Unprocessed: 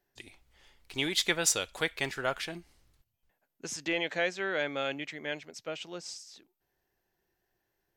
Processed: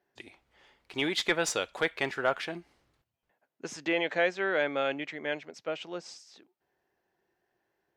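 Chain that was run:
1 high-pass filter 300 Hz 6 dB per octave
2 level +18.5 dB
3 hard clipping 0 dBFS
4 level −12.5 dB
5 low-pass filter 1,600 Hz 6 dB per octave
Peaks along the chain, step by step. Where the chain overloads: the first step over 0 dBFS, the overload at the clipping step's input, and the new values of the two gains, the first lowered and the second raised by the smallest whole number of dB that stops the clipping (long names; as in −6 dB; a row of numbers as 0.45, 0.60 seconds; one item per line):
−12.5, +6.0, 0.0, −12.5, −13.0 dBFS
step 2, 6.0 dB
step 2 +12.5 dB, step 4 −6.5 dB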